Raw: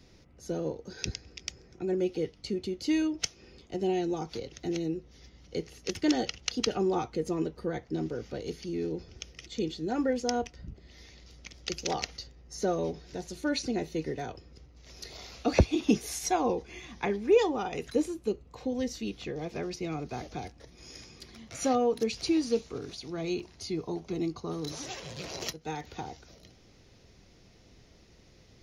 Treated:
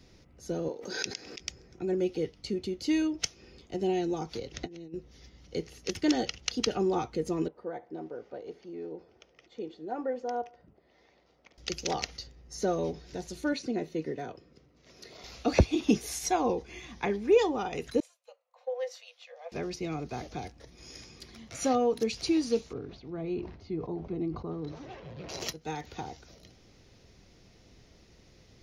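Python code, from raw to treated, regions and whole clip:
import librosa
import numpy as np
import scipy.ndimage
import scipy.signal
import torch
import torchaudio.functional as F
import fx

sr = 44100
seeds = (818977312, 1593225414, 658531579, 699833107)

y = fx.chain(x, sr, fx.highpass(hz=290.0, slope=12),
    fx.pre_swell(db_per_s=46.0), at=(0.68, 1.4))
y = fx.chain(y, sr, fx.air_absorb(metres=75.0),
    fx.over_compress(threshold_db=-39.0, ratio=-0.5), at=(4.54, 4.94))
y = fx.chain(y, sr, fx.bandpass_q(hz=740.0, q=1.2),
    fx.echo_feedback(ms=72, feedback_pct=39, wet_db=-20.5), at=(7.48, 11.58))
y = fx.chain(y, sr, fx.highpass(hz=150.0, slope=12),
    fx.high_shelf(hz=2800.0, db=-9.0),
    fx.notch(hz=830.0, q=7.0), at=(13.53, 15.24))
y = fx.chain(y, sr, fx.cheby1_highpass(hz=490.0, order=10),
    fx.high_shelf(hz=3200.0, db=-11.5),
    fx.band_widen(depth_pct=100), at=(18.0, 19.52))
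y = fx.chain(y, sr, fx.spacing_loss(db_at_10k=41),
    fx.sustainer(db_per_s=88.0), at=(22.73, 25.29))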